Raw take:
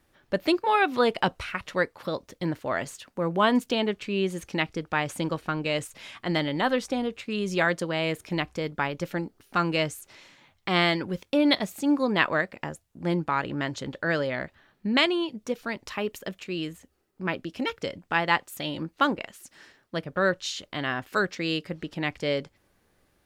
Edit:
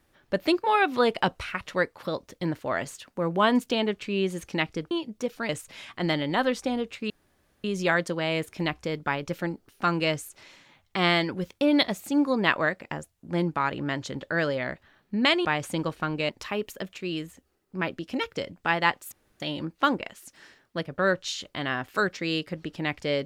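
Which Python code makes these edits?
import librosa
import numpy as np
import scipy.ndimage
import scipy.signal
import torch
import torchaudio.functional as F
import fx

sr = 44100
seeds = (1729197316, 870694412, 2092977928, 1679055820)

y = fx.edit(x, sr, fx.swap(start_s=4.91, length_s=0.84, other_s=15.17, other_length_s=0.58),
    fx.insert_room_tone(at_s=7.36, length_s=0.54),
    fx.insert_room_tone(at_s=18.58, length_s=0.28), tone=tone)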